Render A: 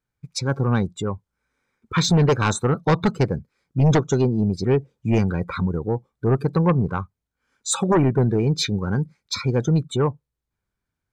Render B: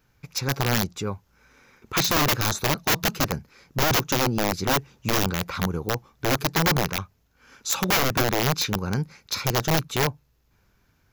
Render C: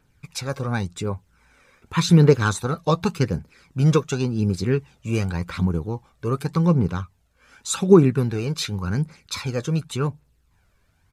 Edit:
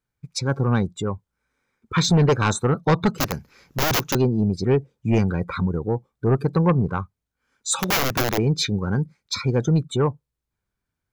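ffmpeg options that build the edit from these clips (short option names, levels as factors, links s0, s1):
-filter_complex "[1:a]asplit=2[s0][s1];[0:a]asplit=3[s2][s3][s4];[s2]atrim=end=3.182[s5];[s0]atrim=start=3.178:end=4.152[s6];[s3]atrim=start=4.148:end=7.792[s7];[s1]atrim=start=7.788:end=8.382[s8];[s4]atrim=start=8.378[s9];[s5][s6]acrossfade=d=0.004:c1=hsin:c2=hsin[s10];[s10][s7]acrossfade=d=0.004:c1=hsin:c2=hsin[s11];[s11][s8]acrossfade=d=0.004:c1=hsin:c2=hsin[s12];[s12][s9]acrossfade=d=0.004:c1=hsin:c2=hsin"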